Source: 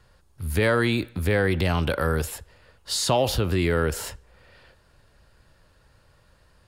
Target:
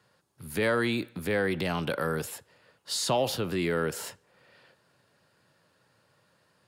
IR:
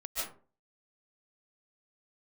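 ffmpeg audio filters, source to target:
-af "highpass=f=130:w=0.5412,highpass=f=130:w=1.3066,volume=-4.5dB"

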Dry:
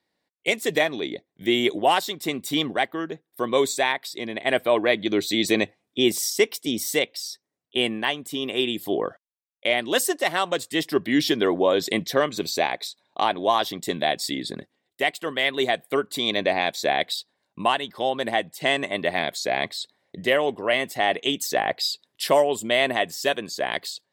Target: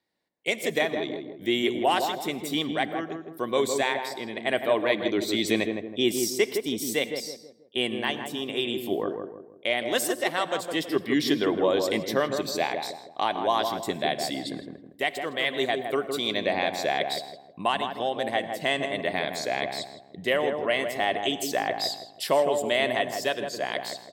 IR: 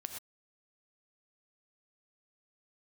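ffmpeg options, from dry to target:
-filter_complex "[0:a]asplit=2[a][b];[b]adelay=161,lowpass=f=970:p=1,volume=-4dB,asplit=2[c][d];[d]adelay=161,lowpass=f=970:p=1,volume=0.43,asplit=2[e][f];[f]adelay=161,lowpass=f=970:p=1,volume=0.43,asplit=2[g][h];[h]adelay=161,lowpass=f=970:p=1,volume=0.43,asplit=2[i][j];[j]adelay=161,lowpass=f=970:p=1,volume=0.43[k];[a][c][e][g][i][k]amix=inputs=6:normalize=0,asplit=2[l][m];[1:a]atrim=start_sample=2205[n];[m][n]afir=irnorm=-1:irlink=0,volume=-6.5dB[o];[l][o]amix=inputs=2:normalize=0,volume=-6.5dB"

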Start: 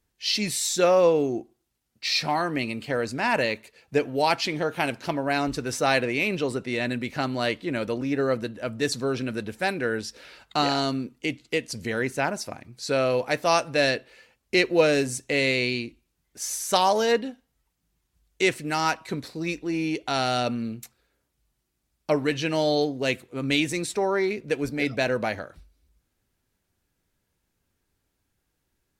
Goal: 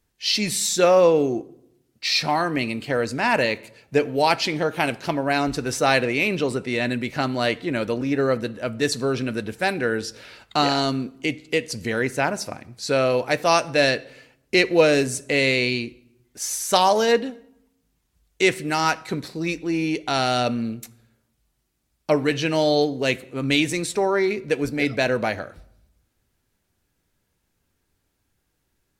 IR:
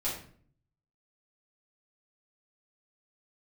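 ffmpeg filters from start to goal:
-filter_complex "[0:a]asplit=2[a][b];[1:a]atrim=start_sample=2205,asetrate=25578,aresample=44100[c];[b][c]afir=irnorm=-1:irlink=0,volume=-27dB[d];[a][d]amix=inputs=2:normalize=0,volume=3dB"

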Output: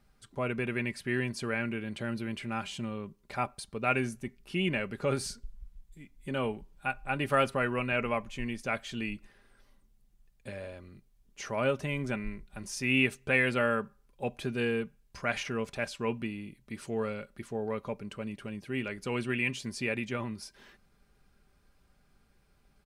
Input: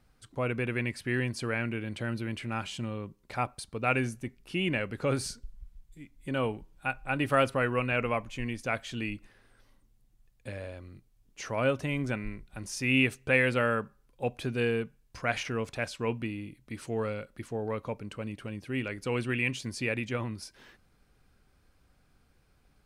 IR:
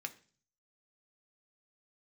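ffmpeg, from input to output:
-af "aecho=1:1:5:0.38,volume=-1.5dB"

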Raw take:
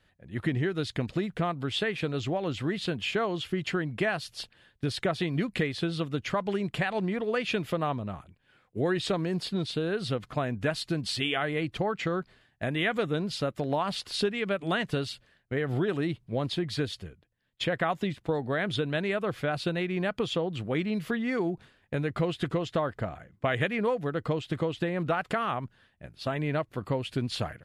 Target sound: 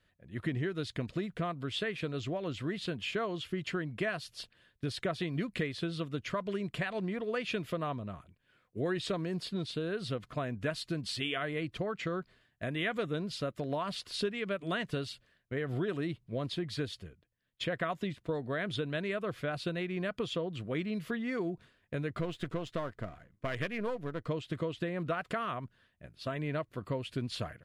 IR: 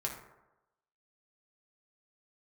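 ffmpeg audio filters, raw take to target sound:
-filter_complex "[0:a]asettb=1/sr,asplit=3[a][b][c];[a]atrim=end=22.204[d];[b]atrim=start=22.2:end=24.28,asetpts=PTS-STARTPTS,afade=t=in:d=0.004:c=qsin,afade=t=out:st=2.076:d=0.004:c=qsin,aeval=exprs='if(lt(val(0),0),0.447*val(0),val(0))':c=same[e];[c]atrim=start=24.276[f];[d][e]acrossfade=d=0.004:c1=hsin:c2=qsin[g];[g][f]acrossfade=d=0.004:c1=qsin:c2=hsin,asuperstop=centerf=820:order=4:qfactor=5.8,volume=-5.5dB"

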